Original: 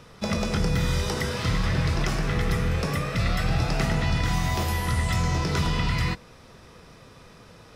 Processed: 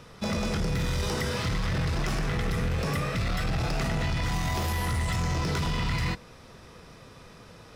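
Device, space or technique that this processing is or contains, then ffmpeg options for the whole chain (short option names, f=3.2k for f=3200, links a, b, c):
limiter into clipper: -af "alimiter=limit=-19dB:level=0:latency=1:release=12,asoftclip=type=hard:threshold=-23.5dB"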